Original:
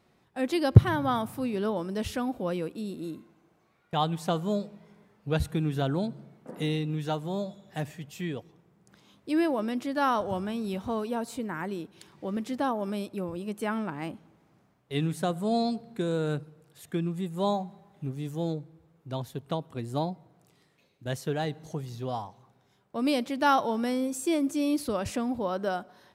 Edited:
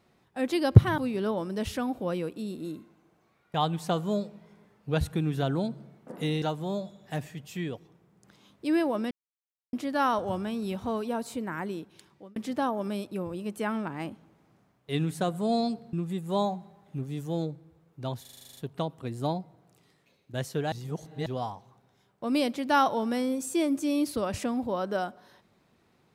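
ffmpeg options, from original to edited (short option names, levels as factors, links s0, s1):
-filter_complex "[0:a]asplit=17[s0][s1][s2][s3][s4][s5][s6][s7][s8][s9][s10][s11][s12][s13][s14][s15][s16];[s0]atrim=end=0.982[s17];[s1]atrim=start=1.368:end=6.812[s18];[s2]atrim=start=7.058:end=9.75,asetpts=PTS-STARTPTS,afade=t=out:st=2.688:d=0.004:c=hsin,apad=pad_dur=0.62[s19];[s3]atrim=start=9.75:end=12.38,asetpts=PTS-STARTPTS,afade=t=in:d=0.004:c=hsin,afade=t=out:st=1.87:d=0.76:c=qsin[s20];[s4]atrim=start=12.38:end=15.952,asetpts=PTS-STARTPTS,afade=t=in:d=0.004:c=hsin[s21];[s5]atrim=start=17.008:end=19.332[s22];[s6]atrim=start=19.288:end=19.332[s23];[s7]atrim=start=19.288:end=19.332[s24];[s8]atrim=start=19.288:end=19.332[s25];[s9]atrim=start=19.288:end=19.332[s26];[s10]atrim=start=19.288:end=19.332[s27];[s11]atrim=start=19.288:end=19.332[s28];[s12]atrim=start=19.288:end=19.332[s29];[s13]atrim=start=19.288:end=19.332[s30];[s14]atrim=start=19.288:end=21.442[s31];[s15]atrim=start=21.438:end=21.982,asetpts=PTS-STARTPTS,areverse[s32];[s16]atrim=start=21.978[s33];[s17][s18]acrossfade=d=0.004:c1=hsin:c2=hsin[s34];[s19][s20][s21]concat=n=3:v=0:a=1[s35];[s34][s35]acrossfade=d=0.004:c1=hsin:c2=hsin[s36];[s36][s22]acrossfade=d=0.004:c1=hsin:c2=hsin[s37];[s37][s23]acrossfade=d=0.004:c1=hsin:c2=hsin[s38];[s38][s24]acrossfade=d=0.004:c1=hsin:c2=hsin[s39];[s39][s25]acrossfade=d=0.004:c1=hsin:c2=hsin[s40];[s40][s26]acrossfade=d=0.004:c1=hsin:c2=hsin[s41];[s41][s27]acrossfade=d=0.004:c1=hsin:c2=hsin[s42];[s42][s28]acrossfade=d=0.004:c1=hsin:c2=hsin[s43];[s43][s29]acrossfade=d=0.004:c1=hsin:c2=hsin[s44];[s44][s30]acrossfade=d=0.004:c1=hsin:c2=hsin[s45];[s45][s31]acrossfade=d=0.004:c1=hsin:c2=hsin[s46];[s46][s32]acrossfade=d=0.004:c1=hsin:c2=hsin[s47];[s47][s33]acrossfade=d=0.004:c1=hsin:c2=hsin"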